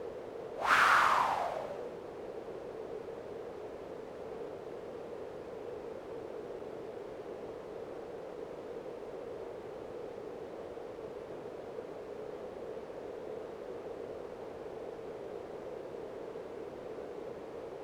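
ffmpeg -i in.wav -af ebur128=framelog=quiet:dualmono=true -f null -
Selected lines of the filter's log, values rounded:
Integrated loudness:
  I:         -35.4 LUFS
  Threshold: -45.3 LUFS
Loudness range:
  LRA:        12.7 LU
  Threshold: -58.0 LUFS
  LRA low:   -41.5 LUFS
  LRA high:  -28.8 LUFS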